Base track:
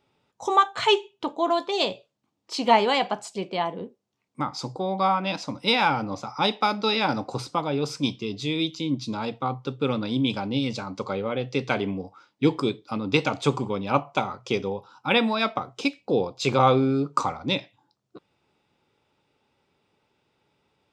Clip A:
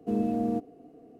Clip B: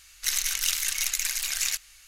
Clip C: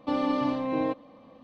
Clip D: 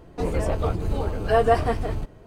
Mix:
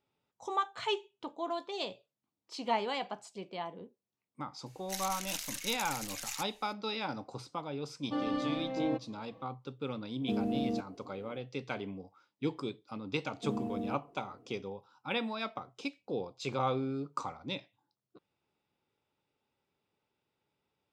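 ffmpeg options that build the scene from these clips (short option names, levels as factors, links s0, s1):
-filter_complex "[1:a]asplit=2[s0][s1];[0:a]volume=0.224[s2];[3:a]aecho=1:1:6.2:0.89[s3];[s0]alimiter=limit=0.075:level=0:latency=1:release=431[s4];[2:a]atrim=end=2.07,asetpts=PTS-STARTPTS,volume=0.224,afade=t=in:d=0.004:c=hsin,afade=t=out:st=2.066:d=0.004:c=hsin,adelay=4660[s5];[s3]atrim=end=1.43,asetpts=PTS-STARTPTS,volume=0.376,afade=t=in:d=0.004:c=hsin,afade=t=out:st=1.426:d=0.004:c=hsin,adelay=8040[s6];[s4]atrim=end=1.19,asetpts=PTS-STARTPTS,volume=0.794,afade=t=in:d=0.004:c=hsin,afade=t=out:st=1.186:d=0.004:c=hsin,adelay=10210[s7];[s1]atrim=end=1.19,asetpts=PTS-STARTPTS,volume=0.355,afade=t=in:d=0.004:c=hsin,afade=t=out:st=1.186:d=0.004:c=hsin,adelay=13360[s8];[s2][s5][s6][s7][s8]amix=inputs=5:normalize=0"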